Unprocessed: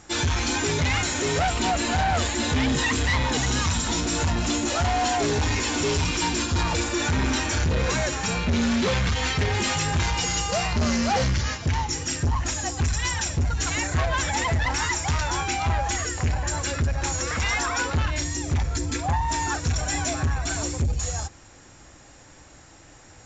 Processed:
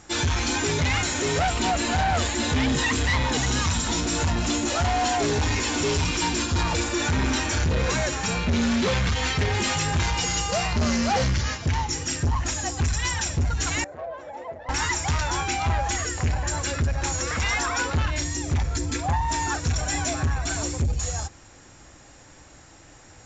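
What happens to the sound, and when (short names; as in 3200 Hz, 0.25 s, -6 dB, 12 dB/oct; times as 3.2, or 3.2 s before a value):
13.84–14.69 band-pass 570 Hz, Q 3.6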